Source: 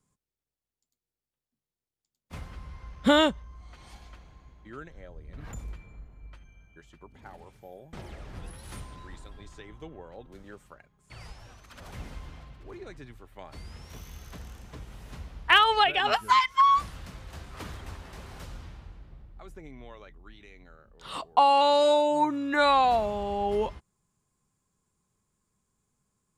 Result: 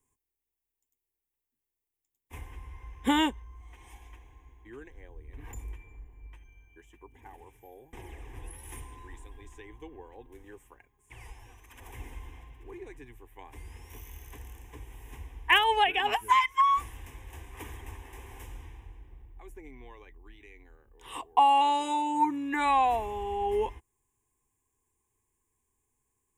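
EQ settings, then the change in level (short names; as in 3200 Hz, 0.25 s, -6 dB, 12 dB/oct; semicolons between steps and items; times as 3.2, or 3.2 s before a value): high shelf 10000 Hz +9.5 dB; fixed phaser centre 900 Hz, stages 8; 0.0 dB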